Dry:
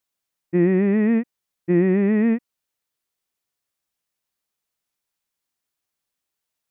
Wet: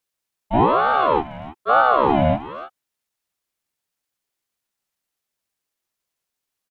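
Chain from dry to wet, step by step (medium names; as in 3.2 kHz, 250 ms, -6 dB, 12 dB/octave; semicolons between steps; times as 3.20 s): harmony voices -7 st -2 dB, +5 st -1 dB; speakerphone echo 310 ms, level -11 dB; ring modulator with a swept carrier 710 Hz, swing 45%, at 1.1 Hz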